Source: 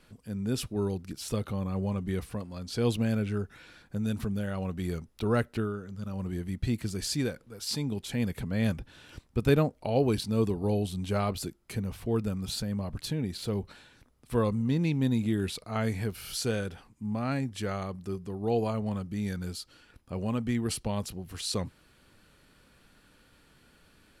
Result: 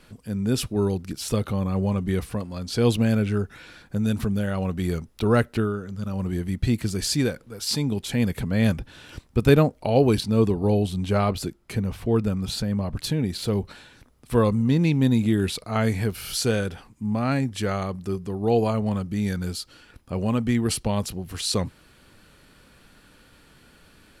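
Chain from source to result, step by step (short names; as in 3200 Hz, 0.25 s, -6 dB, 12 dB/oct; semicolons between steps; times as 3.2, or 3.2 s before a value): 10.2–12.97 high shelf 5200 Hz -6 dB; gain +7 dB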